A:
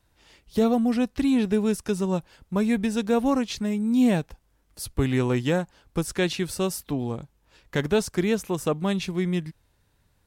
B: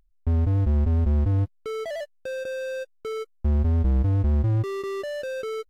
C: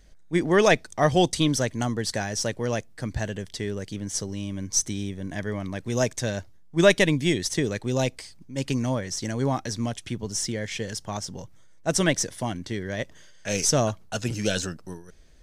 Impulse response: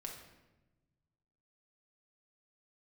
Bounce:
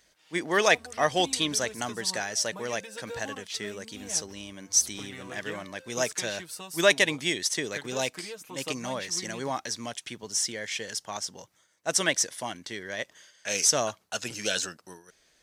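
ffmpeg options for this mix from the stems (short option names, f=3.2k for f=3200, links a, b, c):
-filter_complex "[0:a]acompressor=threshold=-25dB:ratio=6,aecho=1:1:6.4:0.88,volume=-6dB[a];[1:a]adelay=500,volume=-17.5dB[b];[2:a]volume=1.5dB[c];[a][b][c]amix=inputs=3:normalize=0,highpass=f=1k:p=1"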